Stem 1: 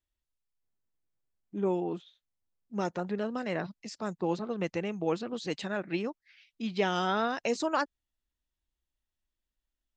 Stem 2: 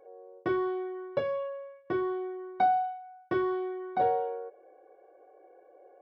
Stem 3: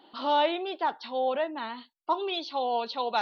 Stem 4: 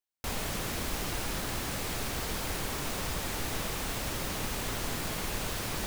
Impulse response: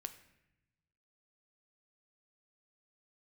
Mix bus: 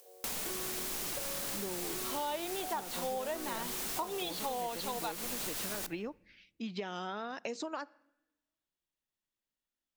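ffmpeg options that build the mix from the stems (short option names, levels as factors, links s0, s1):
-filter_complex "[0:a]volume=0.75,asplit=2[s0][s1];[s1]volume=0.188[s2];[1:a]volume=0.376[s3];[2:a]dynaudnorm=f=100:g=9:m=1.78,adelay=1900,volume=0.668[s4];[3:a]highshelf=f=4800:g=11,acompressor=mode=upward:threshold=0.00891:ratio=2.5,volume=0.596,asplit=2[s5][s6];[s6]volume=0.473[s7];[s0][s3][s5]amix=inputs=3:normalize=0,highpass=f=100:w=0.5412,highpass=f=100:w=1.3066,acompressor=threshold=0.02:ratio=6,volume=1[s8];[4:a]atrim=start_sample=2205[s9];[s2][s7]amix=inputs=2:normalize=0[s10];[s10][s9]afir=irnorm=-1:irlink=0[s11];[s4][s8][s11]amix=inputs=3:normalize=0,acompressor=threshold=0.02:ratio=6"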